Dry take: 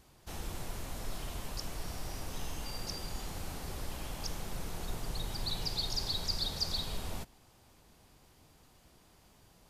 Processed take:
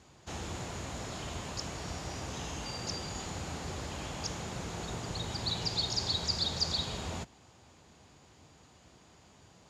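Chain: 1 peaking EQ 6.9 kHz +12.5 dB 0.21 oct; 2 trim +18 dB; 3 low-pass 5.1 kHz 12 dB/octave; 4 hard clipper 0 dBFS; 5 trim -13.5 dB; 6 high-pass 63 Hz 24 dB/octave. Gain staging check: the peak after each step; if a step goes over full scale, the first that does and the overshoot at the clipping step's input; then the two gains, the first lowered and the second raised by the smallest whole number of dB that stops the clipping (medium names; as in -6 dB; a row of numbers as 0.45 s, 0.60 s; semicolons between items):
-19.0 dBFS, -1.0 dBFS, -3.0 dBFS, -3.0 dBFS, -16.5 dBFS, -17.0 dBFS; nothing clips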